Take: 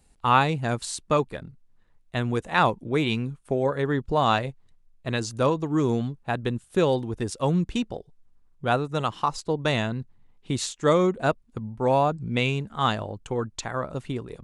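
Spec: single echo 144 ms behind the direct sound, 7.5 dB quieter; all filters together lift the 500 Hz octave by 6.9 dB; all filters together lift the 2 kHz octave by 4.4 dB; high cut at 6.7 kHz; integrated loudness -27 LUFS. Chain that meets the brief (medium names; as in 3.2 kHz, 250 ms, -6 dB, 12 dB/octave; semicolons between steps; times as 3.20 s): low-pass 6.7 kHz; peaking EQ 500 Hz +8 dB; peaking EQ 2 kHz +5.5 dB; delay 144 ms -7.5 dB; trim -6 dB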